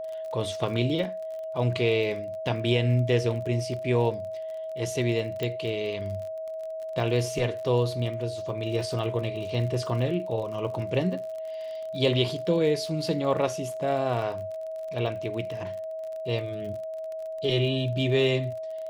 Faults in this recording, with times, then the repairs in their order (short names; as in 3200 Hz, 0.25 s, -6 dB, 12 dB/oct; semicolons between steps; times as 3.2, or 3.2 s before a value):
crackle 40/s -36 dBFS
tone 640 Hz -32 dBFS
5.43 pop -17 dBFS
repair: de-click; notch 640 Hz, Q 30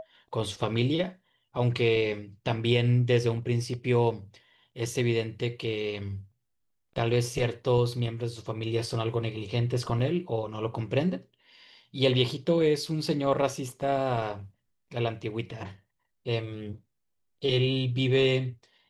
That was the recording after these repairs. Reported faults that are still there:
none